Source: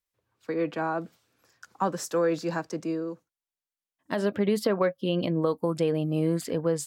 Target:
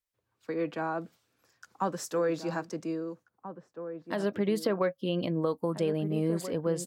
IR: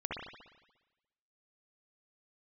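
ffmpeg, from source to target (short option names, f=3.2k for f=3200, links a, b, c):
-filter_complex "[0:a]asplit=2[a][b];[b]adelay=1633,volume=-10dB,highshelf=f=4k:g=-36.7[c];[a][c]amix=inputs=2:normalize=0,volume=-3.5dB"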